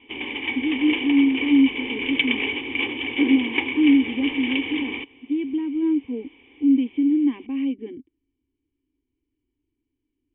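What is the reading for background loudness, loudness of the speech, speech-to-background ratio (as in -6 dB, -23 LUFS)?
-26.0 LUFS, -22.0 LUFS, 4.0 dB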